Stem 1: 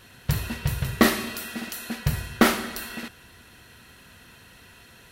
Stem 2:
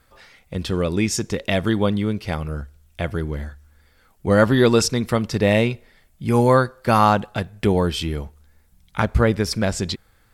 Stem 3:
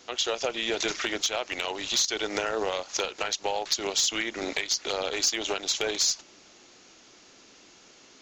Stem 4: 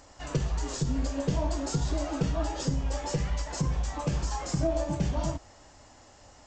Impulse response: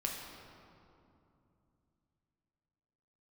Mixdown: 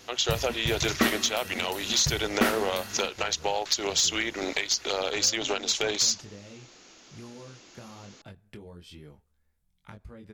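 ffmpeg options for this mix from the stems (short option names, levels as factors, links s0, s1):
-filter_complex "[0:a]volume=0.473[s0];[1:a]acrossover=split=470|3000[s1][s2][s3];[s2]acompressor=threshold=0.0562:ratio=6[s4];[s1][s4][s3]amix=inputs=3:normalize=0,flanger=delay=20:depth=4.2:speed=1.1,acompressor=threshold=0.0501:ratio=12,adelay=900,volume=0.168[s5];[2:a]volume=1.12[s6];[s0][s5][s6]amix=inputs=3:normalize=0"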